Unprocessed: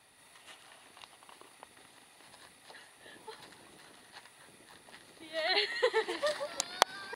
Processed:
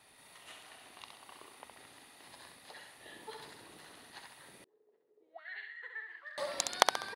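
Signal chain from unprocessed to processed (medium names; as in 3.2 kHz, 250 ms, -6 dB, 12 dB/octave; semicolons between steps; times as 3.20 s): feedback delay 66 ms, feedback 39%, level -5 dB; 4.64–6.38 s: auto-wah 370–1700 Hz, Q 16, up, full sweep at -30.5 dBFS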